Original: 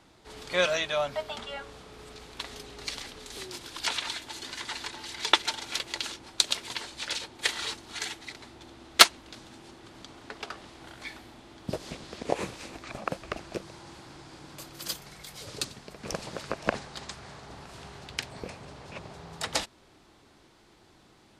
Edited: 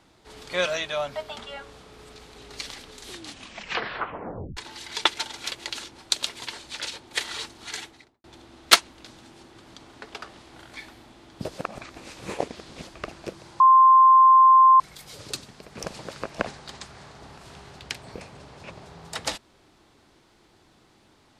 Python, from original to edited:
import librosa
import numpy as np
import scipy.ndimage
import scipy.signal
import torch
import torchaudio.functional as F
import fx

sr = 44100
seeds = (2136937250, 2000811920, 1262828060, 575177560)

y = fx.studio_fade_out(x, sr, start_s=8.04, length_s=0.48)
y = fx.edit(y, sr, fx.cut(start_s=2.36, length_s=0.28),
    fx.tape_stop(start_s=3.32, length_s=1.53),
    fx.reverse_span(start_s=11.86, length_s=1.29),
    fx.bleep(start_s=13.88, length_s=1.2, hz=1050.0, db=-10.5), tone=tone)